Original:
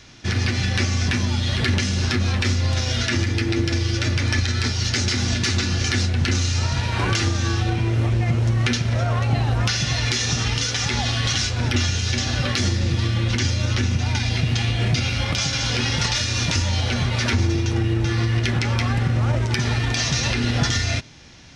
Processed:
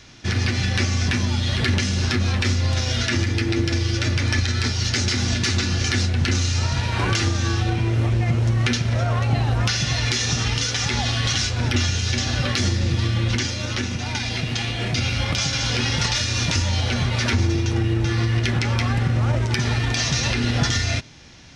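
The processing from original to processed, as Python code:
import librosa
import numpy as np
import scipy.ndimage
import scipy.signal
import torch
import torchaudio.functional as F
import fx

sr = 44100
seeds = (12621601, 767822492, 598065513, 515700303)

y = fx.peak_eq(x, sr, hz=82.0, db=-8.5, octaves=1.7, at=(13.4, 14.95))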